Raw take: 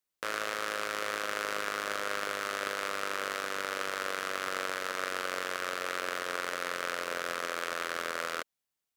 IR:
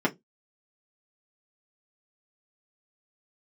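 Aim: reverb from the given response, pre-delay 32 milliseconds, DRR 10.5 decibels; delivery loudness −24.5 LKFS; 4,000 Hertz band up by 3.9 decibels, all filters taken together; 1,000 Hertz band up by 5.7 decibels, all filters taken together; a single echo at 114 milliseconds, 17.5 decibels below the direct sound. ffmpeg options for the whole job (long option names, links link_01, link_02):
-filter_complex "[0:a]equalizer=frequency=1000:width_type=o:gain=7.5,equalizer=frequency=4000:width_type=o:gain=4.5,aecho=1:1:114:0.133,asplit=2[link_01][link_02];[1:a]atrim=start_sample=2205,adelay=32[link_03];[link_02][link_03]afir=irnorm=-1:irlink=0,volume=-22.5dB[link_04];[link_01][link_04]amix=inputs=2:normalize=0,volume=5dB"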